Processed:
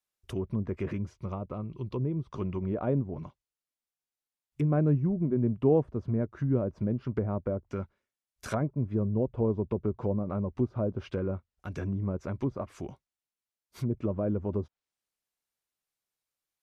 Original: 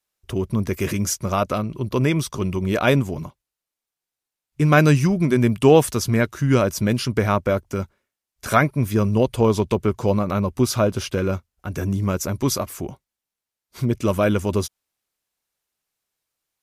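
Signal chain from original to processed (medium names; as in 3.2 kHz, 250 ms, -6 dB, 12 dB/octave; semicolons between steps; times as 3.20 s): low-pass that closes with the level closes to 560 Hz, closed at -16.5 dBFS; 0.98–2.30 s: fifteen-band graphic EQ 250 Hz -4 dB, 630 Hz -7 dB, 1.6 kHz -10 dB, 6.3 kHz -4 dB; trim -9 dB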